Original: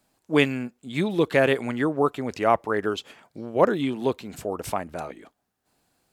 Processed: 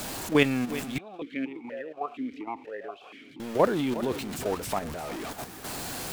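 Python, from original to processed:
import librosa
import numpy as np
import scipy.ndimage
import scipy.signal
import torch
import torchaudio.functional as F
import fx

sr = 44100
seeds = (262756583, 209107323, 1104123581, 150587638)

y = x + 0.5 * 10.0 ** (-29.0 / 20.0) * np.sign(x)
y = fx.level_steps(y, sr, step_db=9)
y = y + 10.0 ** (-14.0 / 20.0) * np.pad(y, (int(363 * sr / 1000.0), 0))[:len(y)]
y = fx.vowel_held(y, sr, hz=4.2, at=(0.98, 3.4))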